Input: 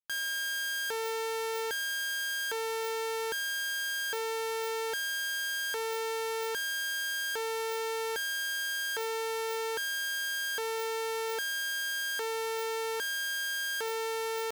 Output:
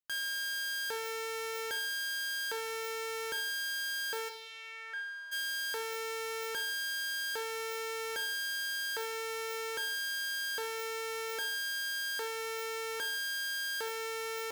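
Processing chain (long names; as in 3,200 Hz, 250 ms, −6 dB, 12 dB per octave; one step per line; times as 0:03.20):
0:04.28–0:05.31: resonant band-pass 4,300 Hz → 1,000 Hz, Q 2.4
reverb whose tail is shaped and stops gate 240 ms falling, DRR 8.5 dB
level −2.5 dB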